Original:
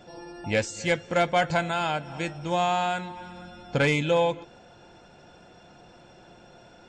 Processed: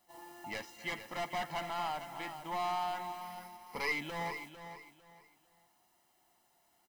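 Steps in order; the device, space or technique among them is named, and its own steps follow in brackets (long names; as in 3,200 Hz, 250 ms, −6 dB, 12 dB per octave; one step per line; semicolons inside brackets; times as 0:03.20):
aircraft radio (band-pass filter 390–2,600 Hz; hard clipping −26 dBFS, distortion −7 dB; white noise bed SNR 21 dB; noise gate −46 dBFS, range −14 dB)
0:03.21–0:03.92: EQ curve with evenly spaced ripples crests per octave 0.86, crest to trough 12 dB
comb filter 1 ms, depth 73%
repeating echo 451 ms, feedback 26%, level −10.5 dB
level −7.5 dB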